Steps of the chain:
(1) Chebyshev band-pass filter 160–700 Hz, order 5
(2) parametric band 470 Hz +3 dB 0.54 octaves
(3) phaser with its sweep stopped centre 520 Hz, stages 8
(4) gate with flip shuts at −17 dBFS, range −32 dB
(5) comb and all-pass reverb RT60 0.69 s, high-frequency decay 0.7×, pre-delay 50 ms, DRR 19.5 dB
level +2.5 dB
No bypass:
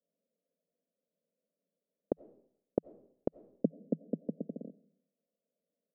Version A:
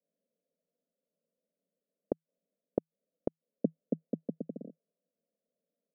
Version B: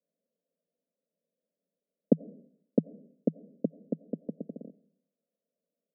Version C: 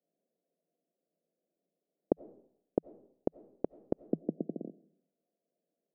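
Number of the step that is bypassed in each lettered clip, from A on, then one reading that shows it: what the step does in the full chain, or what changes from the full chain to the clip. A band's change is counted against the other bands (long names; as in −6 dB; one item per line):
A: 5, change in momentary loudness spread −2 LU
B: 4, change in momentary loudness spread +10 LU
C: 3, 1 kHz band +4.5 dB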